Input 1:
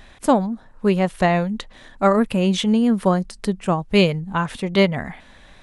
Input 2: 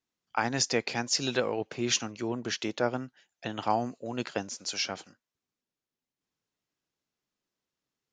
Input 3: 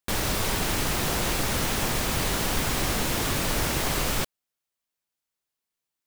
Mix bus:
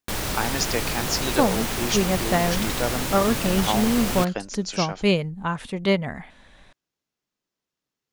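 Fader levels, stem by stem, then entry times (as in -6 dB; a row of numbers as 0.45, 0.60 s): -4.5, +1.5, -1.0 dB; 1.10, 0.00, 0.00 s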